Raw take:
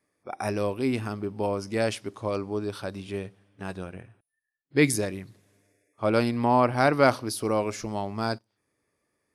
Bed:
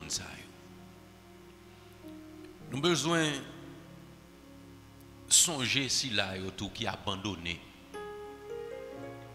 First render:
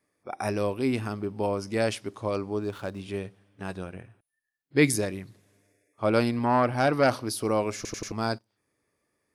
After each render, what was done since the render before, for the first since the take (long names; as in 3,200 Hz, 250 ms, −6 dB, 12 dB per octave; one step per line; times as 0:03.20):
0:02.58–0:03.00: running median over 9 samples
0:06.39–0:07.14: saturating transformer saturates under 720 Hz
0:07.76: stutter in place 0.09 s, 4 plays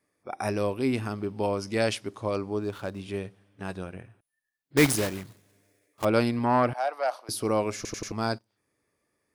0:01.18–0:01.97: parametric band 3,700 Hz +3.5 dB 1.7 octaves
0:04.77–0:06.06: one scale factor per block 3 bits
0:06.73–0:07.29: four-pole ladder high-pass 600 Hz, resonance 55%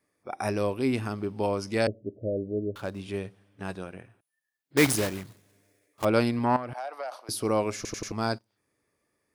0:01.87–0:02.76: Butterworth low-pass 640 Hz 96 dB per octave
0:03.75–0:04.87: high-pass filter 160 Hz 6 dB per octave
0:06.56–0:07.12: downward compressor 8 to 1, threshold −31 dBFS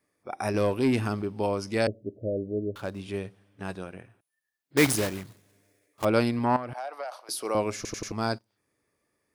0:00.54–0:01.22: leveller curve on the samples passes 1
0:07.04–0:07.55: high-pass filter 470 Hz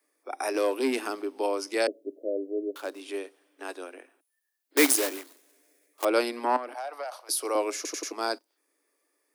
Butterworth high-pass 270 Hz 72 dB per octave
high-shelf EQ 6,900 Hz +8.5 dB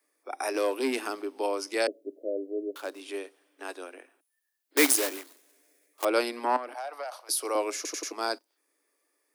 low-shelf EQ 500 Hz −3 dB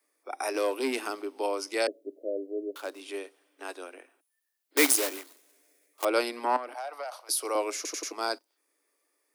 low-shelf EQ 140 Hz −9 dB
notch filter 1,700 Hz, Q 22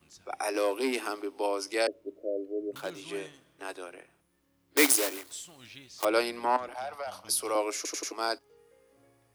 mix in bed −19.5 dB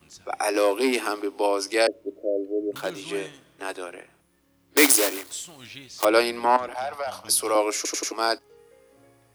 level +7 dB
brickwall limiter −3 dBFS, peak gain reduction 2.5 dB